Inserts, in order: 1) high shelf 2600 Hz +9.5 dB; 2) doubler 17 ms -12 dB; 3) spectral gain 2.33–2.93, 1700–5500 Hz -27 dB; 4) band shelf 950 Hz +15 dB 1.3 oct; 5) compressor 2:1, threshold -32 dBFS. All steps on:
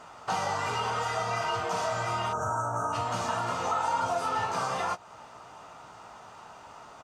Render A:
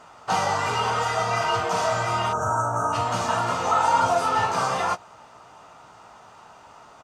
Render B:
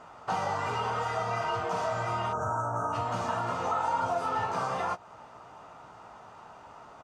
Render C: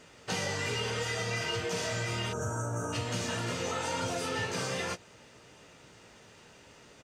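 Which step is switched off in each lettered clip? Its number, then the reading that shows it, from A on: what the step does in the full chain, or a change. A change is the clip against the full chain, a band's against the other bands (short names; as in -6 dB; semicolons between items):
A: 5, mean gain reduction 4.5 dB; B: 1, 8 kHz band -7.5 dB; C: 4, 1 kHz band -14.0 dB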